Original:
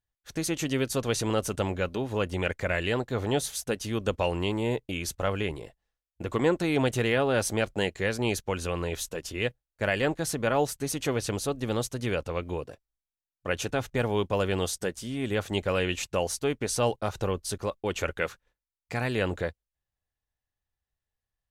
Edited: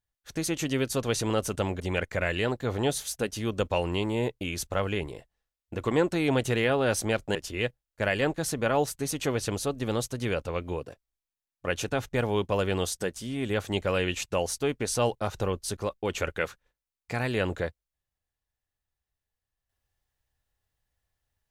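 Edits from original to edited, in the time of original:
0:01.80–0:02.28: remove
0:07.83–0:09.16: remove

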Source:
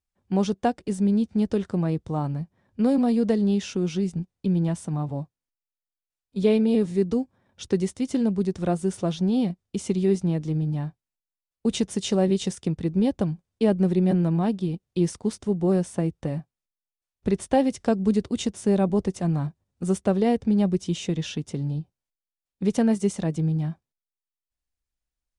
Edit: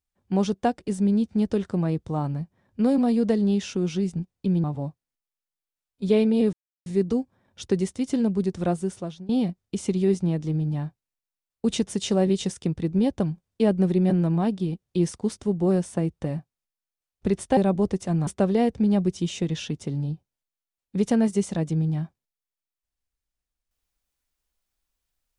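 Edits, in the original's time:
0:04.64–0:04.98: remove
0:06.87: splice in silence 0.33 s
0:08.71–0:09.30: fade out, to −24 dB
0:17.58–0:18.71: remove
0:19.41–0:19.94: remove

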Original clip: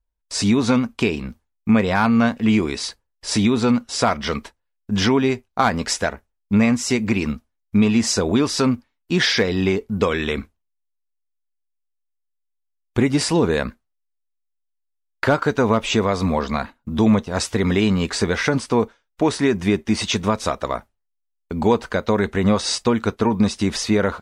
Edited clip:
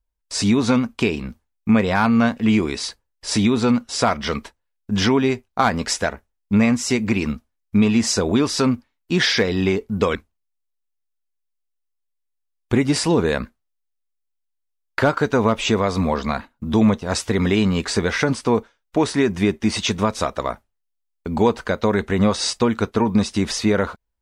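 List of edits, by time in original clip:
0:10.15–0:10.40: remove

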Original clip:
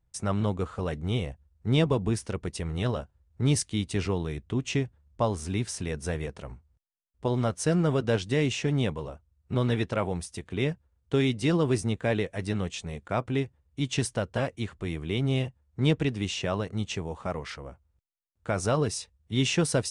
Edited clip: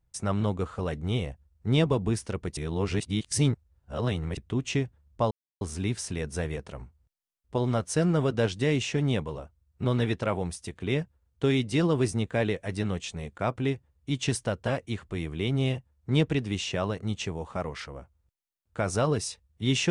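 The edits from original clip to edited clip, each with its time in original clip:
0:02.57–0:04.37: reverse
0:05.31: splice in silence 0.30 s

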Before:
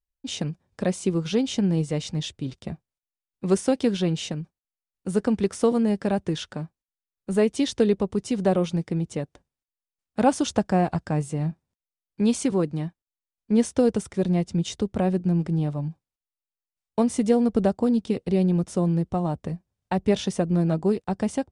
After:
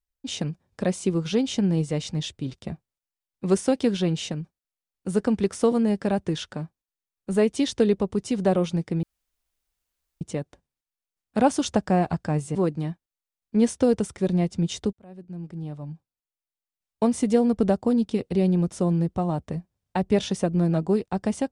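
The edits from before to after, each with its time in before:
0:09.03: splice in room tone 1.18 s
0:11.37–0:12.51: remove
0:14.89–0:17.01: fade in

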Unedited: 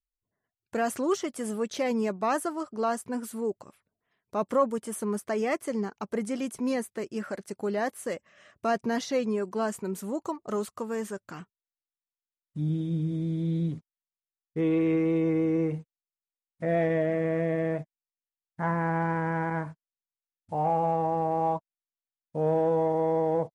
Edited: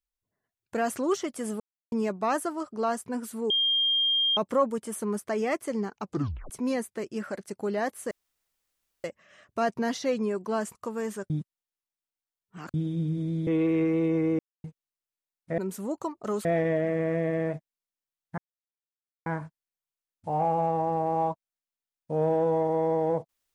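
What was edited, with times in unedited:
0:01.60–0:01.92: silence
0:03.50–0:04.37: beep over 3,210 Hz −21.5 dBFS
0:06.04: tape stop 0.46 s
0:08.11: splice in room tone 0.93 s
0:09.82–0:10.69: move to 0:16.70
0:11.24–0:12.68: reverse
0:13.41–0:14.59: remove
0:15.51–0:15.76: silence
0:18.63–0:19.51: silence

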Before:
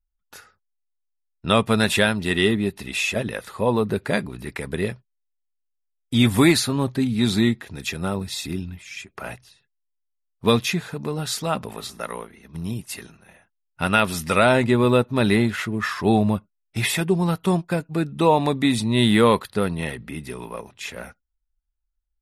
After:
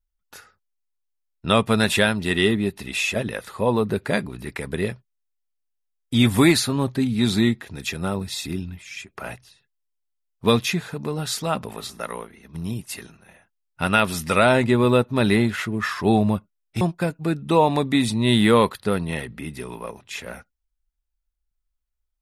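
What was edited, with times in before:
0:16.81–0:17.51: remove

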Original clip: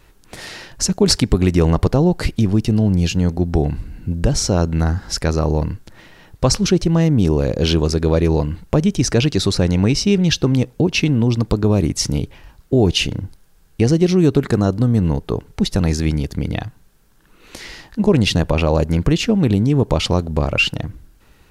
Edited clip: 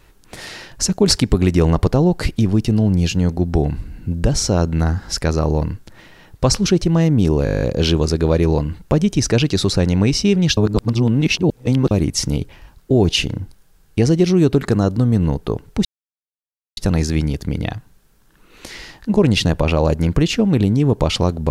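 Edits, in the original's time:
0:07.44: stutter 0.02 s, 10 plays
0:10.39–0:11.73: reverse
0:15.67: splice in silence 0.92 s

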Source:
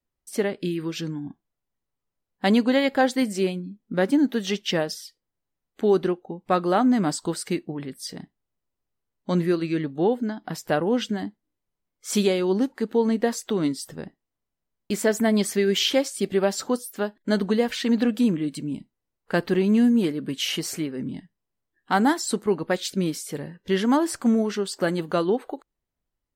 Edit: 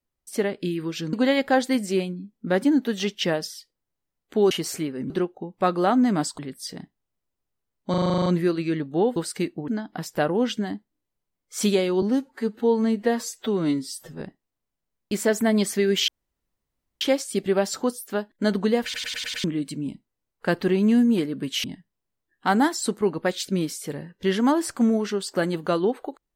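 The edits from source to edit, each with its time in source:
0:01.13–0:02.60: remove
0:07.27–0:07.79: move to 0:10.20
0:09.30: stutter 0.04 s, 10 plays
0:12.54–0:14.00: time-stretch 1.5×
0:15.87: splice in room tone 0.93 s
0:17.70: stutter in place 0.10 s, 6 plays
0:20.50–0:21.09: move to 0:05.98

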